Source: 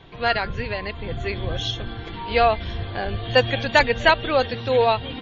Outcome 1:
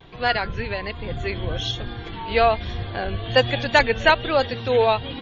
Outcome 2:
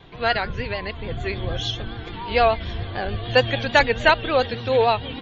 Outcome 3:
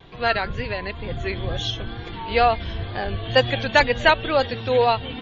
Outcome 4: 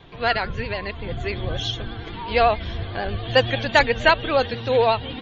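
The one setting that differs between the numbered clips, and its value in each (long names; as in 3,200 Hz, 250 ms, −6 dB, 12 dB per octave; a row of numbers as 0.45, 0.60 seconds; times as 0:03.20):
pitch vibrato, speed: 1.2, 6.8, 2.1, 11 Hertz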